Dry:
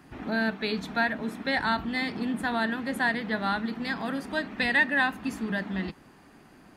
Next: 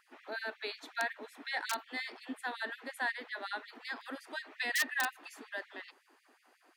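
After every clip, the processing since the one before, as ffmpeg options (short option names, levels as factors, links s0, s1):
-af "aeval=exprs='(mod(5.01*val(0)+1,2)-1)/5.01':c=same,afftfilt=real='re*gte(b*sr/1024,220*pow(1900/220,0.5+0.5*sin(2*PI*5.5*pts/sr)))':imag='im*gte(b*sr/1024,220*pow(1900/220,0.5+0.5*sin(2*PI*5.5*pts/sr)))':win_size=1024:overlap=0.75,volume=0.398"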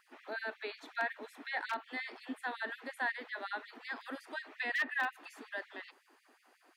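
-filter_complex "[0:a]acrossover=split=3100[s0][s1];[s1]acompressor=threshold=0.00158:ratio=4:attack=1:release=60[s2];[s0][s2]amix=inputs=2:normalize=0"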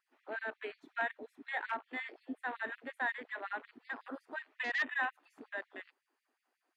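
-af "afwtdn=0.00631"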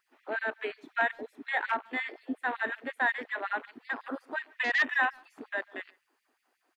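-filter_complex "[0:a]asplit=2[s0][s1];[s1]adelay=140,highpass=300,lowpass=3400,asoftclip=type=hard:threshold=0.0299,volume=0.0501[s2];[s0][s2]amix=inputs=2:normalize=0,volume=2.37"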